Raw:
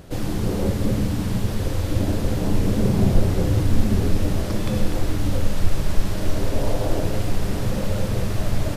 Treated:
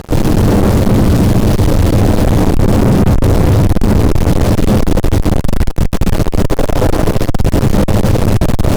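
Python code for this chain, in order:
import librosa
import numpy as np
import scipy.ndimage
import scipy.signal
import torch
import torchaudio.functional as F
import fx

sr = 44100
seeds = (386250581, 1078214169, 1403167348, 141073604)

y = fx.fuzz(x, sr, gain_db=37.0, gate_db=-39.0)
y = fx.tilt_shelf(y, sr, db=4.5, hz=930.0)
y = y * librosa.db_to_amplitude(2.5)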